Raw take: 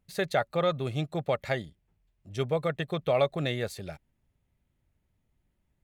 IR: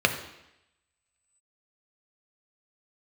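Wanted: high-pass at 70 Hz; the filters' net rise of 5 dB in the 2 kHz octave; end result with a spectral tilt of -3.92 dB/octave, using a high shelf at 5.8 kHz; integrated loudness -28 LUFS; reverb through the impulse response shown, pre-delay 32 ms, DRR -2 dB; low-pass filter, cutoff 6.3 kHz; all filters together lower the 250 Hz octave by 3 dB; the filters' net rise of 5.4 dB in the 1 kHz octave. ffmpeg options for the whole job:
-filter_complex "[0:a]highpass=70,lowpass=6300,equalizer=f=250:t=o:g=-6,equalizer=f=1000:t=o:g=7,equalizer=f=2000:t=o:g=4.5,highshelf=f=5800:g=-4,asplit=2[s0][s1];[1:a]atrim=start_sample=2205,adelay=32[s2];[s1][s2]afir=irnorm=-1:irlink=0,volume=0.211[s3];[s0][s3]amix=inputs=2:normalize=0,volume=0.631"

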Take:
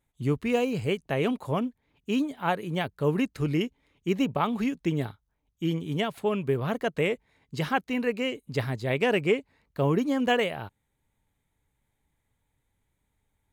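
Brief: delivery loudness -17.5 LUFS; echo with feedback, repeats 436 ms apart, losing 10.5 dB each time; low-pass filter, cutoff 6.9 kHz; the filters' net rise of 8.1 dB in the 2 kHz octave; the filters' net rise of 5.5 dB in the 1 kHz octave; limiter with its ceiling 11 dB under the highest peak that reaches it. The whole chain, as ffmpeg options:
-af "lowpass=6900,equalizer=f=1000:t=o:g=5.5,equalizer=f=2000:t=o:g=8.5,alimiter=limit=0.178:level=0:latency=1,aecho=1:1:436|872|1308:0.299|0.0896|0.0269,volume=3.16"

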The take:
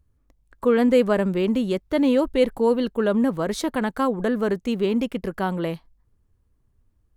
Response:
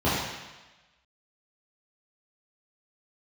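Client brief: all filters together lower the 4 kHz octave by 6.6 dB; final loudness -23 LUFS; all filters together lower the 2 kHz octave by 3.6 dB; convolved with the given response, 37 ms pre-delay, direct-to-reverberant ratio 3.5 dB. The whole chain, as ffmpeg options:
-filter_complex "[0:a]equalizer=f=2000:t=o:g=-3,equalizer=f=4000:t=o:g=-8,asplit=2[s0][s1];[1:a]atrim=start_sample=2205,adelay=37[s2];[s1][s2]afir=irnorm=-1:irlink=0,volume=0.1[s3];[s0][s3]amix=inputs=2:normalize=0,volume=0.631"

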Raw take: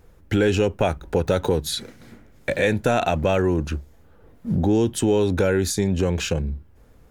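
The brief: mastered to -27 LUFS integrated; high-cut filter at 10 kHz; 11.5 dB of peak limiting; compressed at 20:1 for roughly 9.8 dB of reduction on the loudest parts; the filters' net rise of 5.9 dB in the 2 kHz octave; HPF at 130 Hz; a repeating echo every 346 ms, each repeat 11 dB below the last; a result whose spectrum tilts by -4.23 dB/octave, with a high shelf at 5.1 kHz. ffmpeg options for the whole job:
-af "highpass=130,lowpass=10000,equalizer=f=2000:t=o:g=6.5,highshelf=f=5100:g=8,acompressor=threshold=0.0631:ratio=20,alimiter=limit=0.075:level=0:latency=1,aecho=1:1:346|692|1038:0.282|0.0789|0.0221,volume=2"

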